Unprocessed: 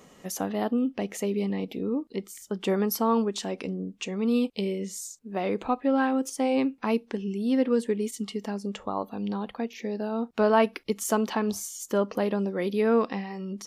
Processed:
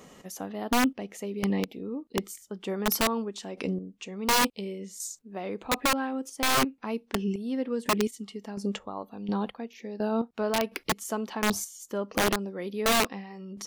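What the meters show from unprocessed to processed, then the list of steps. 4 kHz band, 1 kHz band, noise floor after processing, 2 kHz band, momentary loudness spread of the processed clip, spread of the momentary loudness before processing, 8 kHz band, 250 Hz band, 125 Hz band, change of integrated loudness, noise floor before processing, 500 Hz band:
+7.5 dB, +0.5 dB, -60 dBFS, +5.0 dB, 13 LU, 10 LU, +3.5 dB, -4.0 dB, no reading, -1.5 dB, -55 dBFS, -4.5 dB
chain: square tremolo 1.4 Hz, depth 65%, duty 30%; integer overflow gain 20 dB; trim +2.5 dB

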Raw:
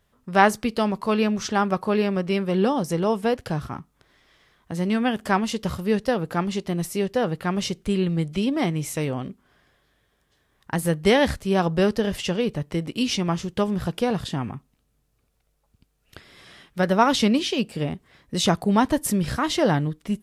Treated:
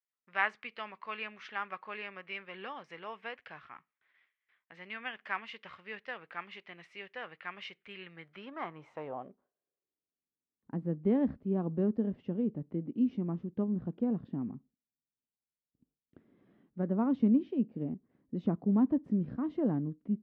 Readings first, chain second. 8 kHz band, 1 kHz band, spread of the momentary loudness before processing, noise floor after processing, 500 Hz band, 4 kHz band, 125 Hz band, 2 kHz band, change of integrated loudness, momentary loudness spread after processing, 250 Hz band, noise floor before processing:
under -40 dB, -17.0 dB, 10 LU, under -85 dBFS, -16.0 dB, -20.5 dB, -12.5 dB, -10.5 dB, -11.0 dB, 18 LU, -9.0 dB, -69 dBFS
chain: gate with hold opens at -48 dBFS; dynamic bell 1.1 kHz, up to +4 dB, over -44 dBFS, Q 6.8; band-pass sweep 2.2 kHz -> 250 Hz, 8.02–10.28 s; low-pass 2.8 kHz 12 dB/octave; trim -3.5 dB

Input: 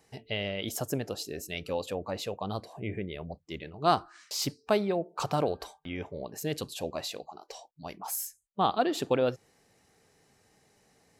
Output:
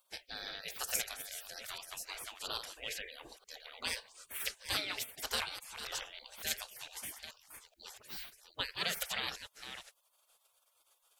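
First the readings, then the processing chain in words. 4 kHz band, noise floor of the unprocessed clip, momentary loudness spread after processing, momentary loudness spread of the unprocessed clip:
0.0 dB, -68 dBFS, 15 LU, 14 LU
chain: chunks repeated in reverse 430 ms, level -10 dB; high-order bell 690 Hz -16 dB; spectral gate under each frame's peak -25 dB weak; trim +12.5 dB

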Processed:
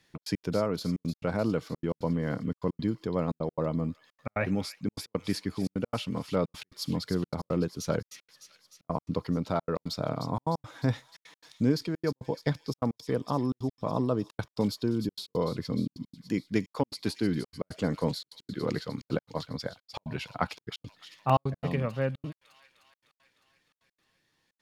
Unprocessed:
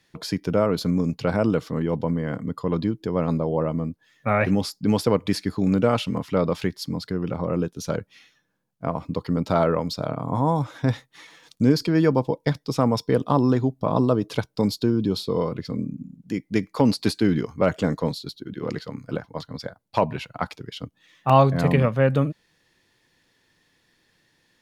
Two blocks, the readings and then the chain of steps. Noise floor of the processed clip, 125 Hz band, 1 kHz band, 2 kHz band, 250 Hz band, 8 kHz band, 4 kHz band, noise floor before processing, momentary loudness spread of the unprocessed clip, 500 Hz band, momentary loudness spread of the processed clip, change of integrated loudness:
under -85 dBFS, -8.0 dB, -8.5 dB, -7.5 dB, -7.5 dB, -5.0 dB, -6.0 dB, -67 dBFS, 12 LU, -8.5 dB, 8 LU, -8.0 dB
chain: gain riding within 5 dB 0.5 s; feedback echo behind a high-pass 304 ms, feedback 66%, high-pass 3.4 kHz, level -8 dB; trance gate "xx.x.xxxx" 172 bpm -60 dB; trim -6.5 dB

